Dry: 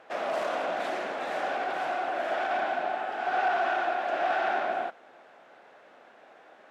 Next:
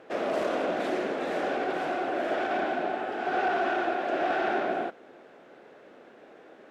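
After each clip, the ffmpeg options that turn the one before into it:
-af "lowshelf=f=550:t=q:w=1.5:g=8"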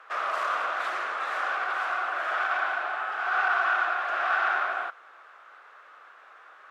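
-af "highpass=f=1.2k:t=q:w=4.9"

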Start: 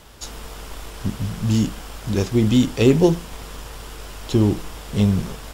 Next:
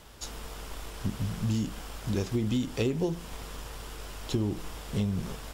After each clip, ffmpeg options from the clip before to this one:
-af "acompressor=threshold=-19dB:ratio=10,volume=-5.5dB"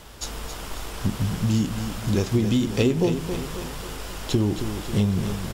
-af "aecho=1:1:271|542|813|1084|1355|1626:0.355|0.185|0.0959|0.0499|0.0259|0.0135,volume=7dB"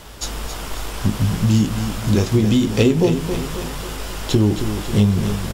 -filter_complex "[0:a]asplit=2[a][b];[b]adelay=19,volume=-11dB[c];[a][c]amix=inputs=2:normalize=0,volume=5dB"

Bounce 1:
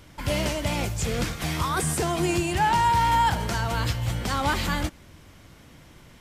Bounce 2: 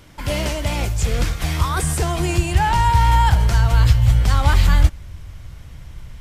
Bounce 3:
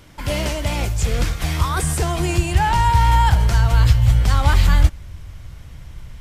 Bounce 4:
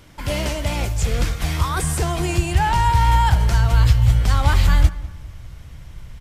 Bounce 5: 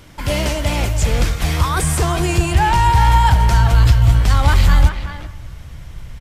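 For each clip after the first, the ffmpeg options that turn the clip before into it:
-af "asubboost=boost=10.5:cutoff=84,volume=3dB"
-af anull
-filter_complex "[0:a]asplit=2[a][b];[b]adelay=198,lowpass=f=2.2k:p=1,volume=-17dB,asplit=2[c][d];[d]adelay=198,lowpass=f=2.2k:p=1,volume=0.41,asplit=2[e][f];[f]adelay=198,lowpass=f=2.2k:p=1,volume=0.41[g];[a][c][e][g]amix=inputs=4:normalize=0,volume=-1dB"
-filter_complex "[0:a]acontrast=35,asplit=2[a][b];[b]adelay=380,highpass=300,lowpass=3.4k,asoftclip=type=hard:threshold=-9.5dB,volume=-8dB[c];[a][c]amix=inputs=2:normalize=0,volume=-1dB"

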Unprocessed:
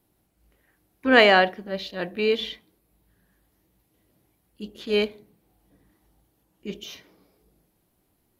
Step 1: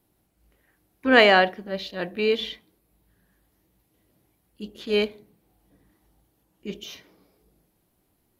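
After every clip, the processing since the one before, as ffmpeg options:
-af anull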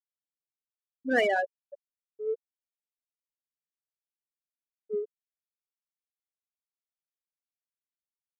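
-af "afftfilt=real='re*gte(hypot(re,im),0.501)':imag='im*gte(hypot(re,im),0.501)':win_size=1024:overlap=0.75,adynamicsmooth=sensitivity=2.5:basefreq=3.2k,volume=-8dB"

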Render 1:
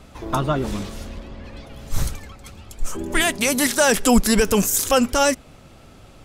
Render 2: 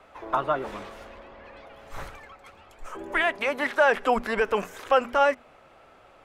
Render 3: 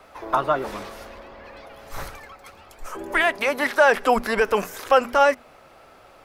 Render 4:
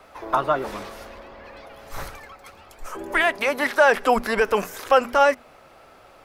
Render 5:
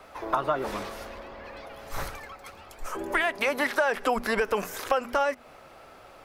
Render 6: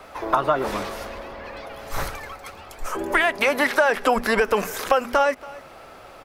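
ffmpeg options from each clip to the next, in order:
-filter_complex "[0:a]bandreject=f=60:t=h:w=6,bandreject=f=120:t=h:w=6,bandreject=f=180:t=h:w=6,bandreject=f=240:t=h:w=6,acrossover=split=3900[a][b];[b]acompressor=threshold=-36dB:ratio=4:attack=1:release=60[c];[a][c]amix=inputs=2:normalize=0,acrossover=split=450 2500:gain=0.112 1 0.141[d][e][f];[d][e][f]amix=inputs=3:normalize=0"
-af "aexciter=amount=2.2:drive=3.9:freq=4.3k,volume=4dB"
-af anull
-af "acompressor=threshold=-22dB:ratio=5"
-af "aecho=1:1:280:0.1,volume=6dB"

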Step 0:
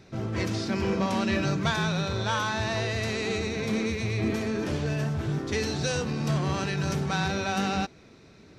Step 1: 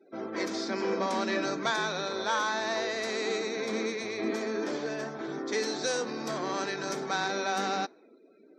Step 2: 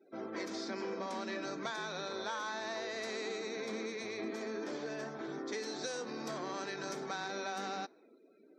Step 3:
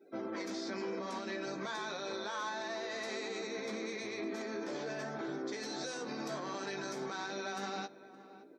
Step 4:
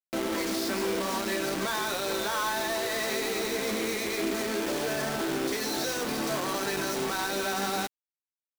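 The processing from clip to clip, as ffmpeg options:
-af "highpass=f=270:w=0.5412,highpass=f=270:w=1.3066,afftdn=nr=28:nf=-53,equalizer=f=2.8k:w=5.1:g=-12"
-af "acompressor=threshold=-31dB:ratio=6,volume=-5dB"
-filter_complex "[0:a]asplit=2[a][b];[b]adelay=15,volume=-5.5dB[c];[a][c]amix=inputs=2:normalize=0,alimiter=level_in=9.5dB:limit=-24dB:level=0:latency=1:release=95,volume=-9.5dB,asplit=2[d][e];[e]adelay=569,lowpass=f=1.6k:p=1,volume=-15.5dB,asplit=2[f][g];[g]adelay=569,lowpass=f=1.6k:p=1,volume=0.43,asplit=2[h][i];[i]adelay=569,lowpass=f=1.6k:p=1,volume=0.43,asplit=2[j][k];[k]adelay=569,lowpass=f=1.6k:p=1,volume=0.43[l];[d][f][h][j][l]amix=inputs=5:normalize=0,volume=2.5dB"
-af "acrusher=bits=6:mix=0:aa=0.000001,volume=9dB"

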